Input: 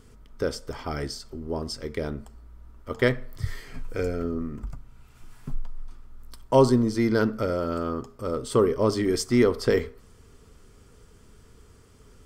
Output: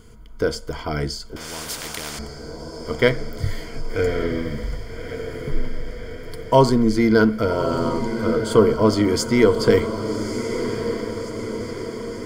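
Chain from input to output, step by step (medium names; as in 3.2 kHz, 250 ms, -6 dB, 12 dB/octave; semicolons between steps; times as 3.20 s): rippled EQ curve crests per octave 1.8, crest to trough 9 dB; echo that smears into a reverb 1190 ms, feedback 60%, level -8.5 dB; 1.36–2.19 s: spectrum-flattening compressor 4:1; trim +4.5 dB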